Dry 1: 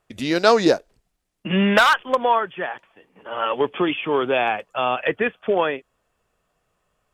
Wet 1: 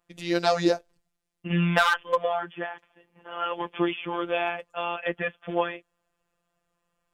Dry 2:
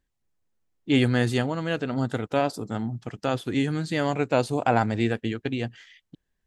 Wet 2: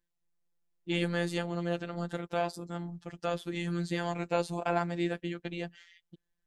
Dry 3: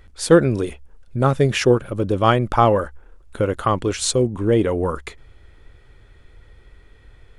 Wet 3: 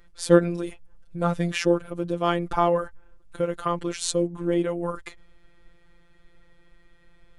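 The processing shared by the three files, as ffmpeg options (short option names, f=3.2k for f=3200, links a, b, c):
-af "afftfilt=real='hypot(re,im)*cos(PI*b)':imag='0':win_size=1024:overlap=0.75,volume=-3dB"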